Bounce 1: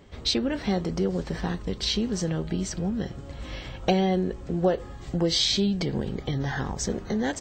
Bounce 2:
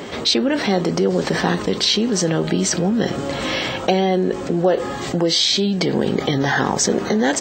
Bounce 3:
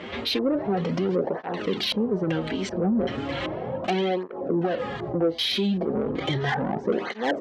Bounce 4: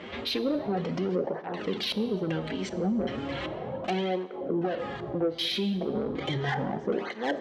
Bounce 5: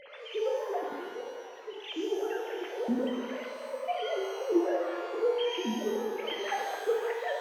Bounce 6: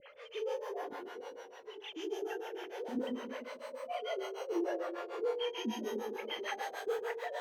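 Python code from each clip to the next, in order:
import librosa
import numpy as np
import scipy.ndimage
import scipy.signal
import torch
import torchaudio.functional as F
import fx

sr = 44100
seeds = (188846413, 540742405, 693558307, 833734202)

y1 = fx.rider(x, sr, range_db=4, speed_s=0.5)
y1 = scipy.signal.sosfilt(scipy.signal.butter(2, 230.0, 'highpass', fs=sr, output='sos'), y1)
y1 = fx.env_flatten(y1, sr, amount_pct=50)
y1 = y1 * librosa.db_to_amplitude(6.0)
y2 = fx.filter_lfo_lowpass(y1, sr, shape='square', hz=1.3, low_hz=680.0, high_hz=2900.0, q=1.5)
y2 = 10.0 ** (-12.0 / 20.0) * np.tanh(y2 / 10.0 ** (-12.0 / 20.0))
y2 = fx.flanger_cancel(y2, sr, hz=0.35, depth_ms=7.3)
y2 = y2 * librosa.db_to_amplitude(-2.5)
y3 = fx.rev_plate(y2, sr, seeds[0], rt60_s=1.3, hf_ratio=0.95, predelay_ms=0, drr_db=12.5)
y3 = y3 * librosa.db_to_amplitude(-4.5)
y4 = fx.sine_speech(y3, sr)
y4 = fx.spec_box(y4, sr, start_s=0.84, length_s=1.01, low_hz=280.0, high_hz=2600.0, gain_db=-11)
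y4 = fx.rev_shimmer(y4, sr, seeds[1], rt60_s=1.6, semitones=12, shimmer_db=-8, drr_db=0.5)
y4 = y4 * librosa.db_to_amplitude(-4.5)
y5 = fx.harmonic_tremolo(y4, sr, hz=6.7, depth_pct=100, crossover_hz=450.0)
y5 = y5 * librosa.db_to_amplitude(-1.0)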